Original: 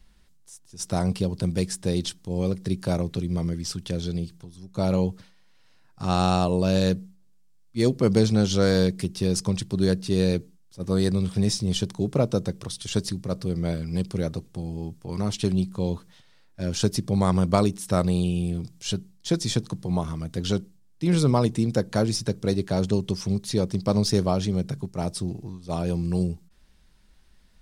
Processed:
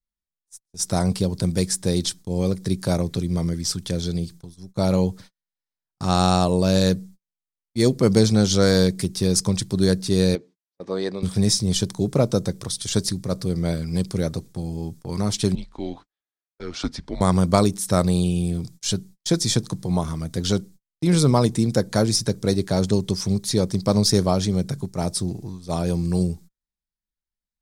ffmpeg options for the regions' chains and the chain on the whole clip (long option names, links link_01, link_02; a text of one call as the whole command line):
ffmpeg -i in.wav -filter_complex "[0:a]asettb=1/sr,asplit=3[link_01][link_02][link_03];[link_01]atrim=end=10.354[link_04];[link_02]atrim=start=10.35:end=11.23,asetpts=PTS-STARTPTS,afade=type=in:duration=0.004:curve=qsin,afade=type=out:start_time=0.876:duration=0.004:curve=qsin,highpass=380,lowpass=2800,equalizer=frequency=1400:width_type=o:width=0.41:gain=-4.5[link_05];[link_03]atrim=start=11.226[link_06];[link_04][link_05]acrossfade=duration=0.004:curve1=hsin:curve2=qsin[link_07];[link_07][link_06]acrossfade=duration=0.004:curve1=qsin:curve2=hsin,asettb=1/sr,asplit=3[link_08][link_09][link_10];[link_08]atrim=end=15.554[link_11];[link_09]atrim=start=15.55:end=17.21,asetpts=PTS-STARTPTS,afade=type=in:duration=0.004:curve=qsin,afade=type=out:start_time=1.656:duration=0.004:curve=qsin,highpass=400,lowpass=3000,afreqshift=-160[link_12];[link_10]atrim=start=17.206[link_13];[link_11][link_12]acrossfade=duration=0.004:curve1=hsin:curve2=qsin[link_14];[link_14][link_13]acrossfade=duration=0.004:curve1=qsin:curve2=hsin,equalizer=frequency=2800:width=4.7:gain=-7,agate=range=-38dB:threshold=-44dB:ratio=16:detection=peak,highshelf=frequency=3900:gain=6.5,volume=3dB" out.wav